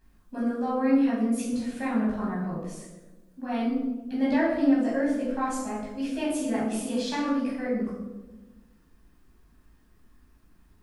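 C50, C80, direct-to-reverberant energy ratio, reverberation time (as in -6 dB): 2.0 dB, 5.0 dB, -7.5 dB, 1.2 s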